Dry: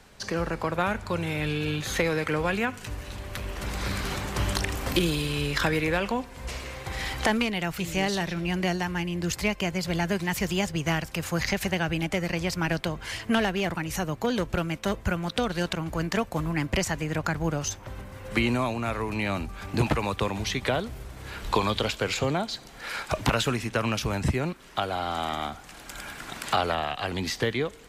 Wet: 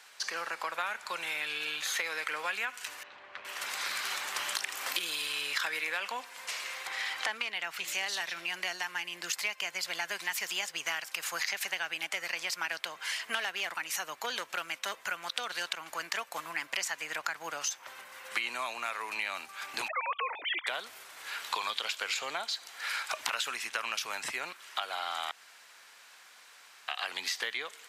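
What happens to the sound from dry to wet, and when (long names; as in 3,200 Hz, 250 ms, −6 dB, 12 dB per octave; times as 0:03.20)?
0:03.03–0:03.45: head-to-tape spacing loss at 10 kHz 39 dB
0:06.87–0:07.88: high-shelf EQ 6,100 Hz −10 dB
0:19.88–0:20.67: three sine waves on the formant tracks
0:25.31–0:26.88: fill with room tone
whole clip: high-pass filter 1,200 Hz 12 dB per octave; downward compressor 2.5 to 1, threshold −35 dBFS; level +3 dB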